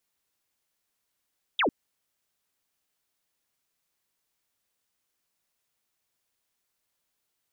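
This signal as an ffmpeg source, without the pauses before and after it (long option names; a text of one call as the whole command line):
ffmpeg -f lavfi -i "aevalsrc='0.0891*clip(t/0.002,0,1)*clip((0.1-t)/0.002,0,1)*sin(2*PI*3800*0.1/log(220/3800)*(exp(log(220/3800)*t/0.1)-1))':duration=0.1:sample_rate=44100" out.wav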